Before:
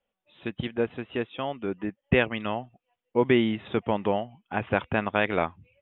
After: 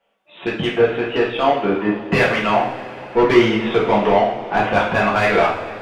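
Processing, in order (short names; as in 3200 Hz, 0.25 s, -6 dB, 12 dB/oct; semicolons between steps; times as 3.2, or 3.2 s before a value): overdrive pedal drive 24 dB, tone 1400 Hz, clips at -7 dBFS; two-slope reverb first 0.5 s, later 4.7 s, from -20 dB, DRR -5.5 dB; gain -1.5 dB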